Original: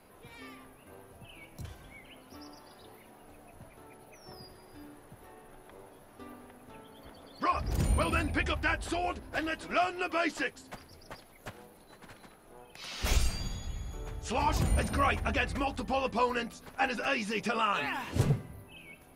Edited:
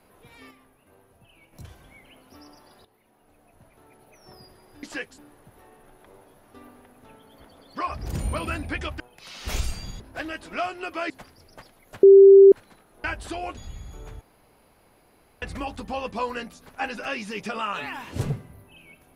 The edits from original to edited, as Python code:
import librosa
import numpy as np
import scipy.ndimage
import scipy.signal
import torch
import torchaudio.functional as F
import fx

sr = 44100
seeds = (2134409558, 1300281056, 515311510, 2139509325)

y = fx.edit(x, sr, fx.clip_gain(start_s=0.51, length_s=1.02, db=-5.5),
    fx.fade_in_from(start_s=2.85, length_s=1.4, floor_db=-13.0),
    fx.swap(start_s=8.65, length_s=0.53, other_s=12.57, other_length_s=1.0),
    fx.move(start_s=10.28, length_s=0.35, to_s=4.83),
    fx.bleep(start_s=11.56, length_s=0.49, hz=392.0, db=-6.5),
    fx.room_tone_fill(start_s=14.21, length_s=1.21), tone=tone)